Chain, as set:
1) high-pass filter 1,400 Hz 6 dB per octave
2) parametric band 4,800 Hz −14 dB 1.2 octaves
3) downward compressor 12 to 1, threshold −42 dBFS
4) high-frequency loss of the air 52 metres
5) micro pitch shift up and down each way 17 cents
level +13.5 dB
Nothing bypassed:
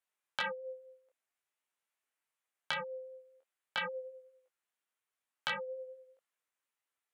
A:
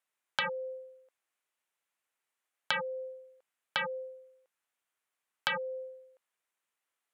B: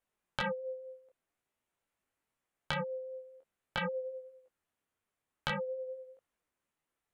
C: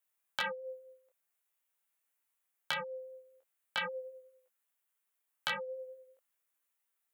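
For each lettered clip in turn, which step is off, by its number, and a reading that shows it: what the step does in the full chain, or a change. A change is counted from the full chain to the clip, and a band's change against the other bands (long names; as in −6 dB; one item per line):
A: 5, change in crest factor +2.0 dB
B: 1, 125 Hz band +14.5 dB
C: 4, 8 kHz band +4.0 dB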